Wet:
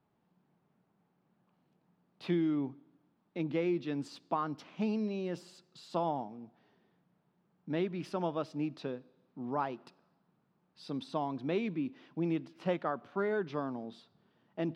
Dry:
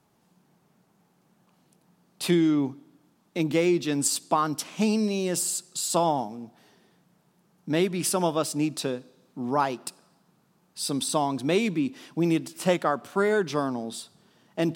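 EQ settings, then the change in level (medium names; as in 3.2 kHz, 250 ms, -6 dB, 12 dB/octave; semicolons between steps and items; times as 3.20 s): distance through air 280 m; -8.5 dB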